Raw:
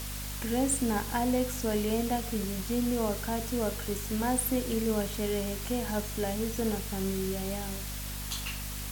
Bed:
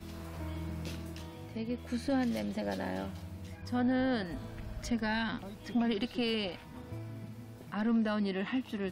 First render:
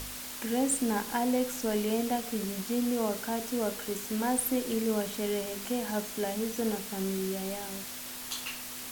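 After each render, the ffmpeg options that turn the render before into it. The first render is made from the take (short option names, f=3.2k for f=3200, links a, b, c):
-af "bandreject=f=50:t=h:w=4,bandreject=f=100:t=h:w=4,bandreject=f=150:t=h:w=4,bandreject=f=200:t=h:w=4"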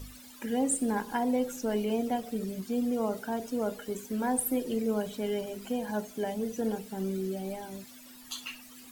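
-af "afftdn=nr=15:nf=-41"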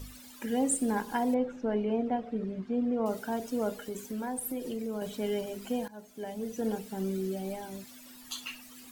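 -filter_complex "[0:a]asettb=1/sr,asplit=3[a][b][c];[a]atrim=end=1.344[d];[b]atrim=start=1.34:end=3.06,asetpts=PTS-STARTPTS,afade=t=in:d=0.004:c=qsin,afade=t=out:st=1.716:d=0.004:c=qsin,lowpass=2k[e];[c]atrim=start=3.056[f];[d][e]acrossfade=d=0.004:c1=hsin:c2=qsin[g];[g][f]acrossfade=d=0.004:c1=qsin:c2=hsin,asettb=1/sr,asplit=3[h][i][j];[h]atrim=end=3.714[k];[i]atrim=start=3.71:end=5.02,asetpts=PTS-STARTPTS,afade=t=in:d=0.004:c=qsin,afade=t=out:st=1.306:d=0.004:c=qsin,acompressor=threshold=-33dB:ratio=3:attack=3.2:release=140:knee=1:detection=peak[l];[j]atrim=start=5.016[m];[k][l]acrossfade=d=0.004:c1=hsin:c2=qsin[n];[n][m]acrossfade=d=0.004:c1=qsin:c2=hsin,asplit=2[o][p];[o]atrim=end=5.88,asetpts=PTS-STARTPTS,afade=t=out:st=5.876:d=0.004:c=hsin:silence=0.0944061[q];[p]atrim=start=5.88,asetpts=PTS-STARTPTS,afade=t=in:d=0.86:silence=0.0944061[r];[q][r]concat=n=2:v=0:a=1"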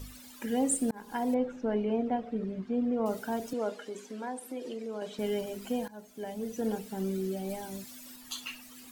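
-filter_complex "[0:a]asettb=1/sr,asplit=3[a][b][c];[a]atrim=end=3.534[d];[b]atrim=start=3.53:end=5.19,asetpts=PTS-STARTPTS,afade=t=in:d=0.004:c=qsin,afade=t=out:st=1.656:d=0.004:c=qsin,highpass=290,lowpass=6.1k[e];[c]atrim=start=5.186[f];[d][e]acrossfade=d=0.004:c1=hsin:c2=qsin[g];[g][f]acrossfade=d=0.004:c1=qsin:c2=hsin,asettb=1/sr,asplit=3[h][i][j];[h]atrim=end=7.494[k];[i]atrim=start=7.49:end=8.16,asetpts=PTS-STARTPTS,afade=t=in:d=0.004:c=qsin,afade=t=out:st=0.666:d=0.004:c=qsin,bass=f=250:g=2,treble=f=4k:g=4[l];[j]atrim=start=8.156[m];[k][l]acrossfade=d=0.004:c1=hsin:c2=qsin[n];[n][m]acrossfade=d=0.004:c1=qsin:c2=hsin,asplit=2[o][p];[o]atrim=end=0.91,asetpts=PTS-STARTPTS,afade=t=out:st=0.906:d=0.004:c=hsin[q];[p]atrim=start=0.91,asetpts=PTS-STARTPTS,afade=t=in:d=0.55:c=qsin[r];[q][r]concat=n=2:v=0:a=1"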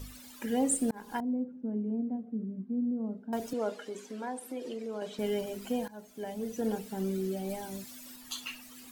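-filter_complex "[0:a]asettb=1/sr,asplit=3[a][b][c];[a]atrim=end=1.204[d];[b]atrim=start=1.2:end=3.33,asetpts=PTS-STARTPTS,afade=t=in:d=0.004:c=qsin,afade=t=out:st=2.126:d=0.004:c=qsin,bandpass=f=220:t=q:w=2.4[e];[c]atrim=start=3.326[f];[d][e]acrossfade=d=0.004:c1=hsin:c2=qsin[g];[g][f]acrossfade=d=0.004:c1=qsin:c2=hsin"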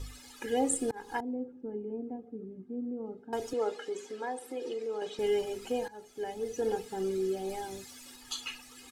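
-af "lowpass=9.3k,aecho=1:1:2.4:0.7"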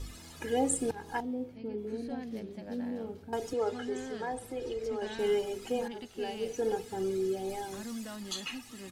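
-filter_complex "[1:a]volume=-11dB[a];[0:a][a]amix=inputs=2:normalize=0"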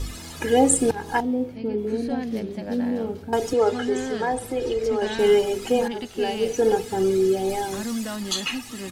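-af "volume=11.5dB"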